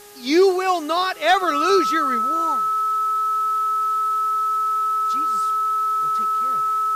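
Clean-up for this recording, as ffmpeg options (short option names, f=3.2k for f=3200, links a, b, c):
-af "adeclick=t=4,bandreject=f=411.4:t=h:w=4,bandreject=f=822.8:t=h:w=4,bandreject=f=1.2342k:t=h:w=4,bandreject=f=1.6456k:t=h:w=4,bandreject=f=1.3k:w=30,afwtdn=0.0056"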